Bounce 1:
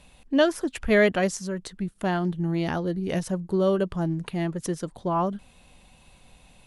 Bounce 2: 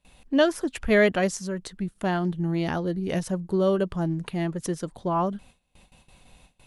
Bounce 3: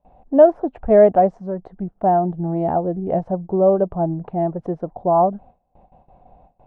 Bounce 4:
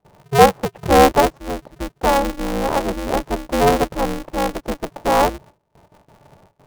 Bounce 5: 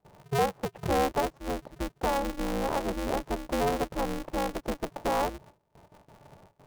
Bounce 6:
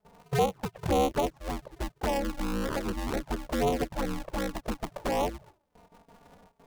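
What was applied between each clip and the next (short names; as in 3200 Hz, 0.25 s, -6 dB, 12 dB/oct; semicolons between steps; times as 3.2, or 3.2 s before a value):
gate with hold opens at -43 dBFS
synth low-pass 730 Hz, resonance Q 4.9; gain +2 dB
polarity switched at an audio rate 140 Hz
compressor 2.5:1, threshold -24 dBFS, peak gain reduction 12.5 dB; gain -4.5 dB
envelope flanger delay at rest 4.7 ms, full sweep at -23 dBFS; gain +2.5 dB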